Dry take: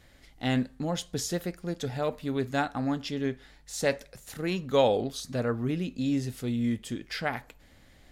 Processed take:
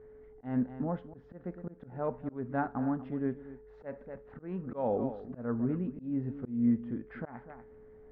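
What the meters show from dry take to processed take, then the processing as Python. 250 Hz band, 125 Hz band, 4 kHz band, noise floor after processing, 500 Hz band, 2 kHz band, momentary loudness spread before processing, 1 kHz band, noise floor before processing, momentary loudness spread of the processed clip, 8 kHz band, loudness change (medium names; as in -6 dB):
-2.5 dB, -5.5 dB, under -35 dB, -55 dBFS, -7.5 dB, -13.0 dB, 9 LU, -6.0 dB, -58 dBFS, 16 LU, under -40 dB, -4.5 dB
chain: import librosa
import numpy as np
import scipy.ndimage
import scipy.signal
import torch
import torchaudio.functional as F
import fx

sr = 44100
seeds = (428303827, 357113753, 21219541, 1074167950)

p1 = x + 10.0 ** (-47.0 / 20.0) * np.sin(2.0 * np.pi * 430.0 * np.arange(len(x)) / sr)
p2 = fx.small_body(p1, sr, hz=(230.0, 920.0), ring_ms=65, db=7)
p3 = p2 + fx.echo_single(p2, sr, ms=243, db=-15.5, dry=0)
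p4 = fx.auto_swell(p3, sr, attack_ms=212.0)
p5 = scipy.signal.sosfilt(scipy.signal.butter(4, 1500.0, 'lowpass', fs=sr, output='sos'), p4)
y = F.gain(torch.from_numpy(p5), -4.0).numpy()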